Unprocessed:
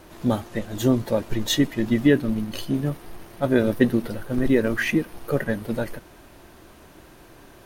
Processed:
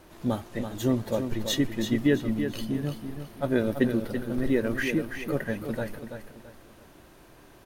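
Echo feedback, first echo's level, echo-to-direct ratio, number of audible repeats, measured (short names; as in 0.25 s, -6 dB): 32%, -8.0 dB, -7.5 dB, 3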